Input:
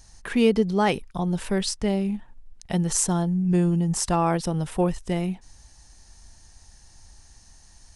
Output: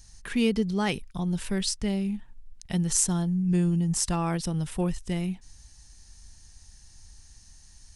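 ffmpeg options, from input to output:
-af "equalizer=f=660:t=o:w=2.4:g=-9.5"

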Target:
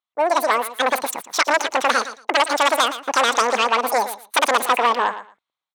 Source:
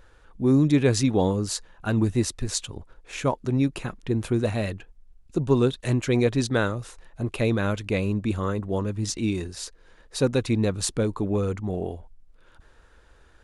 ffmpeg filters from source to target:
-filter_complex "[0:a]agate=range=0.0126:threshold=0.00794:ratio=16:detection=peak,highshelf=f=2100:g=-7.5,dynaudnorm=f=600:g=5:m=3.35,aeval=exprs='0.335*sin(PI/2*1.41*val(0)/0.335)':c=same,highpass=300,lowpass=4600,asplit=2[s0][s1];[s1]aecho=0:1:270|540:0.224|0.0381[s2];[s0][s2]amix=inputs=2:normalize=0,asetrate=103194,aresample=44100"

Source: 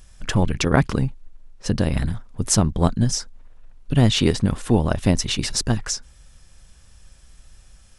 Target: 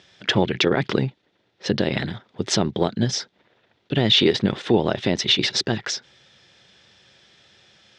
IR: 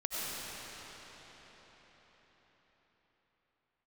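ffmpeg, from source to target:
-af "highpass=f=140:w=0.5412,highpass=f=140:w=1.3066,equalizer=f=160:t=q:w=4:g=-8,equalizer=f=250:t=q:w=4:g=-6,equalizer=f=380:t=q:w=4:g=5,equalizer=f=1100:t=q:w=4:g=-6,equalizer=f=2000:t=q:w=4:g=4,equalizer=f=3500:t=q:w=4:g=8,lowpass=f=5000:w=0.5412,lowpass=f=5000:w=1.3066,alimiter=level_in=3.35:limit=0.891:release=50:level=0:latency=1,volume=0.501"

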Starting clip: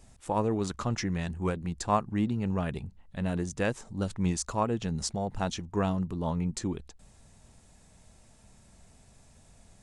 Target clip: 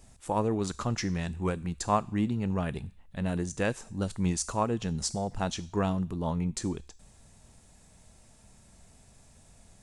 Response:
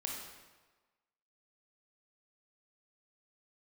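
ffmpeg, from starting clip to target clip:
-filter_complex "[0:a]asplit=2[s0][s1];[s1]aderivative[s2];[1:a]atrim=start_sample=2205,asetrate=83790,aresample=44100[s3];[s2][s3]afir=irnorm=-1:irlink=0,volume=0.891[s4];[s0][s4]amix=inputs=2:normalize=0"

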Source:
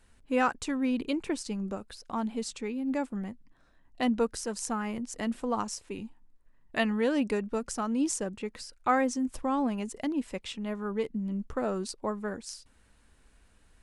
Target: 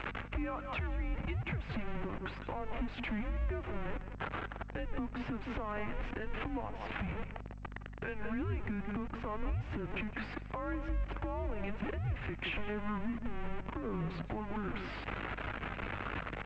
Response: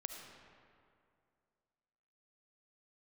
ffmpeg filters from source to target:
-filter_complex "[0:a]aeval=exprs='val(0)+0.5*0.0299*sgn(val(0))':c=same,bandreject=f=60:t=h:w=6,bandreject=f=120:t=h:w=6,bandreject=f=180:t=h:w=6,bandreject=f=240:t=h:w=6,asplit=2[s0][s1];[s1]adelay=140,highpass=300,lowpass=3400,asoftclip=type=hard:threshold=0.0891,volume=0.224[s2];[s0][s2]amix=inputs=2:normalize=0,atempo=0.84,highpass=f=240:t=q:w=0.5412,highpass=f=240:t=q:w=1.307,lowpass=f=2900:t=q:w=0.5176,lowpass=f=2900:t=q:w=0.7071,lowpass=f=2900:t=q:w=1.932,afreqshift=-210,acompressor=threshold=0.0224:ratio=20,alimiter=level_in=2.82:limit=0.0631:level=0:latency=1:release=256,volume=0.355,asplit=2[s3][s4];[1:a]atrim=start_sample=2205,afade=t=out:st=0.44:d=0.01,atrim=end_sample=19845[s5];[s4][s5]afir=irnorm=-1:irlink=0,volume=0.141[s6];[s3][s6]amix=inputs=2:normalize=0,aeval=exprs='val(0)+0.00316*(sin(2*PI*50*n/s)+sin(2*PI*2*50*n/s)/2+sin(2*PI*3*50*n/s)/3+sin(2*PI*4*50*n/s)/4+sin(2*PI*5*50*n/s)/5)':c=same,acontrast=66,volume=0.75" -ar 16000 -c:a g722

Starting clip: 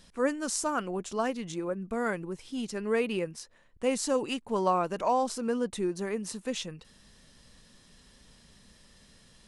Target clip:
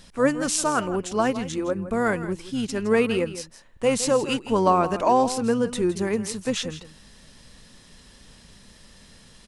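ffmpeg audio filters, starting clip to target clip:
-filter_complex "[0:a]aecho=1:1:164:0.211,asplit=2[s0][s1];[s1]asetrate=22050,aresample=44100,atempo=2,volume=0.224[s2];[s0][s2]amix=inputs=2:normalize=0,volume=2.24"

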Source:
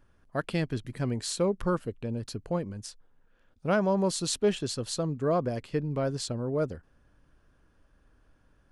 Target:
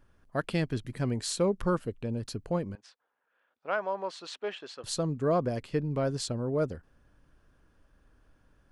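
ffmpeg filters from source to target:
-filter_complex "[0:a]asettb=1/sr,asplit=3[s0][s1][s2];[s0]atrim=end=2.754[s3];[s1]atrim=start=2.75:end=4.84,asetpts=PTS-STARTPTS,afade=t=in:d=0.004:c=qsin,afade=t=out:st=2.086:d=0.004:c=qsin,highpass=720,lowpass=2600[s4];[s2]atrim=start=4.836[s5];[s3][s4]acrossfade=d=0.004:c1=hsin:c2=qsin[s6];[s6][s5]acrossfade=d=0.004:c1=qsin:c2=hsin"

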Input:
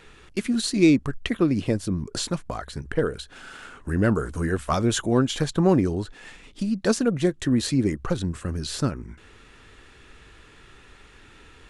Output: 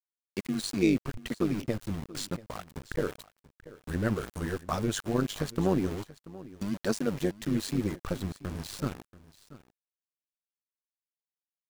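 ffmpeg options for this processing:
-af "aeval=exprs='val(0)*gte(abs(val(0)),0.0316)':c=same,tremolo=f=100:d=0.71,aecho=1:1:684:0.119,volume=0.596"

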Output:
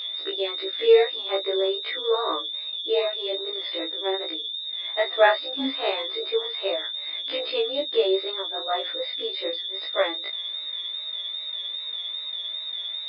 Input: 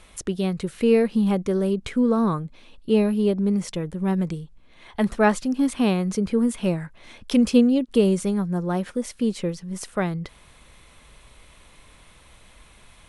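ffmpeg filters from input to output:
-af "equalizer=f=630:t=o:w=0.33:g=9,equalizer=f=1250:t=o:w=0.33:g=4,equalizer=f=2000:t=o:w=0.33:g=11,aeval=exprs='val(0)+0.0708*sin(2*PI*3600*n/s)':c=same,afftfilt=real='re*between(b*sr/4096,270,5100)':imag='im*between(b*sr/4096,270,5100)':win_size=4096:overlap=0.75,flanger=delay=19.5:depth=7:speed=2.5,afftfilt=real='re*1.73*eq(mod(b,3),0)':imag='im*1.73*eq(mod(b,3),0)':win_size=2048:overlap=0.75,volume=1.33"

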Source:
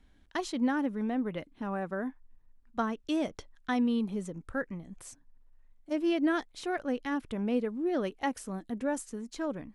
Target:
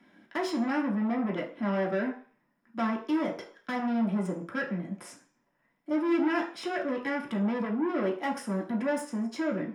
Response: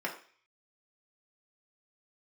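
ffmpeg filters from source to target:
-filter_complex "[0:a]asplit=2[s0][s1];[s1]alimiter=level_in=1.5:limit=0.0631:level=0:latency=1,volume=0.668,volume=0.891[s2];[s0][s2]amix=inputs=2:normalize=0,asoftclip=type=tanh:threshold=0.0266[s3];[1:a]atrim=start_sample=2205[s4];[s3][s4]afir=irnorm=-1:irlink=0"

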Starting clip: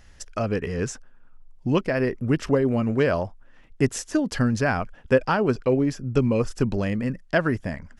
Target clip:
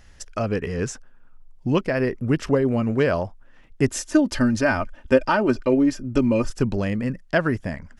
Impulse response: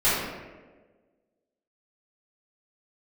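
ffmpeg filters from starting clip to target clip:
-filter_complex "[0:a]asettb=1/sr,asplit=3[s0][s1][s2];[s0]atrim=end=3.874[s3];[s1]atrim=start=3.87:end=6.5,asetpts=PTS-STARTPTS,afade=t=in:d=0.004:c=qsin,afade=t=out:st=2.626:d=0.004:c=qsin,aecho=1:1:3.3:0.67,atrim=end_sample=115983[s4];[s2]atrim=start=6.496[s5];[s3][s4]acrossfade=d=0.004:c1=hsin:c2=qsin[s6];[s6][s5]acrossfade=d=0.004:c1=qsin:c2=hsin,volume=1.12"

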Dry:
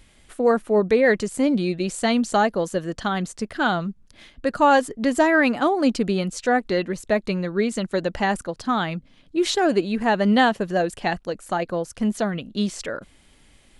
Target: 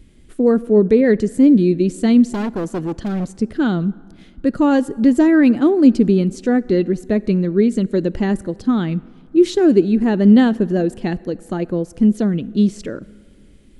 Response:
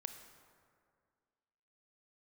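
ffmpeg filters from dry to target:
-filter_complex "[0:a]lowshelf=f=500:t=q:w=1.5:g=12,asettb=1/sr,asplit=3[s0][s1][s2];[s0]atrim=end=2.294[s3];[s1]atrim=start=2.29:end=3.38,asetpts=PTS-STARTPTS,afade=t=in:d=0.004:c=qsin,afade=t=out:st=1.086:d=0.004:c=qsin,volume=5.31,asoftclip=hard,volume=0.188[s4];[s2]atrim=start=3.376[s5];[s3][s4]acrossfade=d=0.004:c1=hsin:c2=qsin[s6];[s6][s5]acrossfade=d=0.004:c1=qsin:c2=hsin,asplit=2[s7][s8];[1:a]atrim=start_sample=2205[s9];[s8][s9]afir=irnorm=-1:irlink=0,volume=0.398[s10];[s7][s10]amix=inputs=2:normalize=0,volume=0.473"

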